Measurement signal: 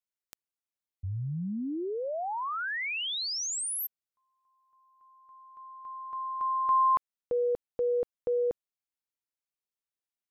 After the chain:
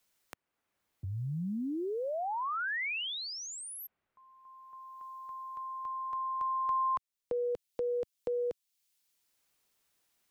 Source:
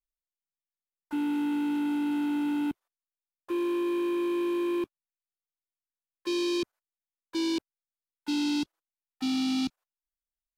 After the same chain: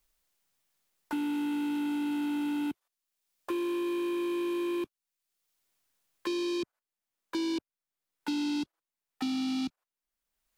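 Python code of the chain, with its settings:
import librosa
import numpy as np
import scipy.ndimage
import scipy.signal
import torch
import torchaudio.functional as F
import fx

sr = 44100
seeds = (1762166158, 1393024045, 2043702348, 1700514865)

y = fx.band_squash(x, sr, depth_pct=70)
y = F.gain(torch.from_numpy(y), -3.0).numpy()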